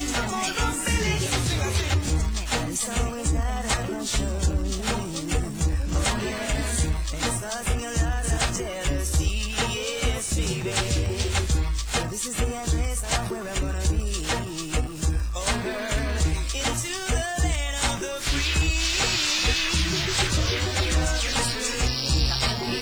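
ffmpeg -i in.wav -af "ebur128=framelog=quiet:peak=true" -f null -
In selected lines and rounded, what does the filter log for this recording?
Integrated loudness:
  I:         -25.2 LUFS
  Threshold: -35.2 LUFS
Loudness range:
  LRA:         3.9 LU
  Threshold: -45.3 LUFS
  LRA low:   -26.8 LUFS
  LRA high:  -22.8 LUFS
True peak:
  Peak:      -10.6 dBFS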